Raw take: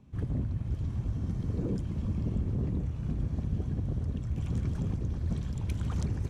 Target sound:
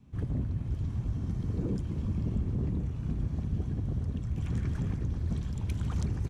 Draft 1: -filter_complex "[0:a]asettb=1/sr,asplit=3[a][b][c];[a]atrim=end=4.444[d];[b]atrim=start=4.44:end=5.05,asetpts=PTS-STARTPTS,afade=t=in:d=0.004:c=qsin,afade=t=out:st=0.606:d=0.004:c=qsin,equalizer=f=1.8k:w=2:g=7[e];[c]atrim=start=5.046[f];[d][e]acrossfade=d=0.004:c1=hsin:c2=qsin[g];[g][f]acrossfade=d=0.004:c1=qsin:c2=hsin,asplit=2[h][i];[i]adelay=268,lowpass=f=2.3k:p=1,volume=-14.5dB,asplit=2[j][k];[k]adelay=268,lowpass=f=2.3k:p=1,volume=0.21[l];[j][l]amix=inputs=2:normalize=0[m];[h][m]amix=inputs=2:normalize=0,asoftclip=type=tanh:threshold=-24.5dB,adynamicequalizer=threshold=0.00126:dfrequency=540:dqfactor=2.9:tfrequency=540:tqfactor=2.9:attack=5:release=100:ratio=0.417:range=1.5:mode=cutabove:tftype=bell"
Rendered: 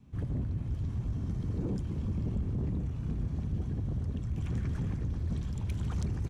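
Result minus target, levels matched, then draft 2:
soft clip: distortion +20 dB
-filter_complex "[0:a]asettb=1/sr,asplit=3[a][b][c];[a]atrim=end=4.444[d];[b]atrim=start=4.44:end=5.05,asetpts=PTS-STARTPTS,afade=t=in:d=0.004:c=qsin,afade=t=out:st=0.606:d=0.004:c=qsin,equalizer=f=1.8k:w=2:g=7[e];[c]atrim=start=5.046[f];[d][e]acrossfade=d=0.004:c1=hsin:c2=qsin[g];[g][f]acrossfade=d=0.004:c1=qsin:c2=hsin,asplit=2[h][i];[i]adelay=268,lowpass=f=2.3k:p=1,volume=-14.5dB,asplit=2[j][k];[k]adelay=268,lowpass=f=2.3k:p=1,volume=0.21[l];[j][l]amix=inputs=2:normalize=0[m];[h][m]amix=inputs=2:normalize=0,asoftclip=type=tanh:threshold=-13dB,adynamicequalizer=threshold=0.00126:dfrequency=540:dqfactor=2.9:tfrequency=540:tqfactor=2.9:attack=5:release=100:ratio=0.417:range=1.5:mode=cutabove:tftype=bell"

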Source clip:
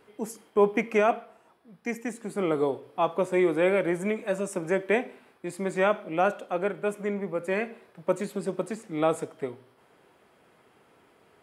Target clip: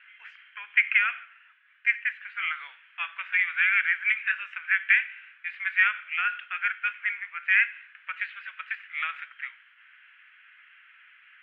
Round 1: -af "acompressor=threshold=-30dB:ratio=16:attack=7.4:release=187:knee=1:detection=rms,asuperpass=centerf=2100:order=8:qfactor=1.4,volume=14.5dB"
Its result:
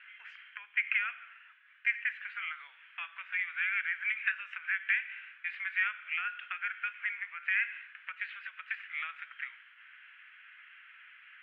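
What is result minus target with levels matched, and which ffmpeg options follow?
compressor: peak gain reduction +9.5 dB
-af "acompressor=threshold=-20dB:ratio=16:attack=7.4:release=187:knee=1:detection=rms,asuperpass=centerf=2100:order=8:qfactor=1.4,volume=14.5dB"

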